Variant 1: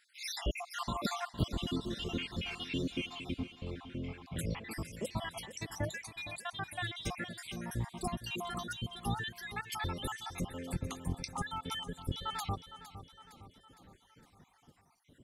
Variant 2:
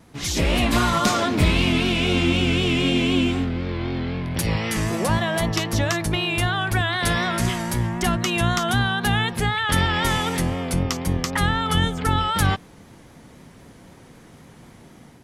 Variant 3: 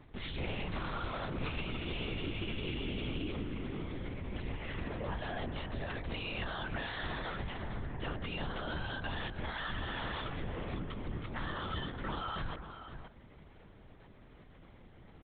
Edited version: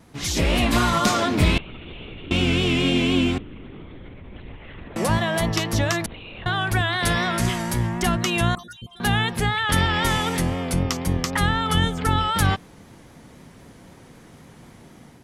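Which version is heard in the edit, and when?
2
1.58–2.31 from 3
3.38–4.96 from 3
6.06–6.46 from 3
8.55–9 from 1

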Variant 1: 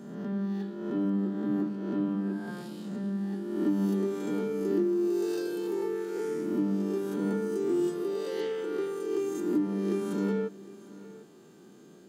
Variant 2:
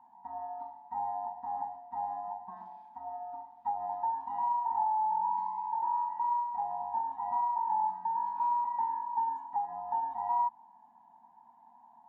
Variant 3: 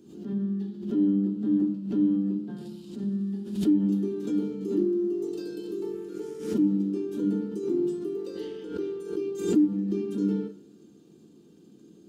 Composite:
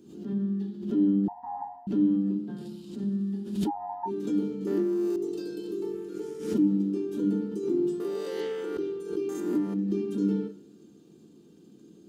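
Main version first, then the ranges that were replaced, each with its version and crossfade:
3
1.28–1.87 from 2
3.68–4.08 from 2, crossfade 0.06 s
4.67–5.16 from 1
8–8.77 from 1
9.29–9.74 from 1

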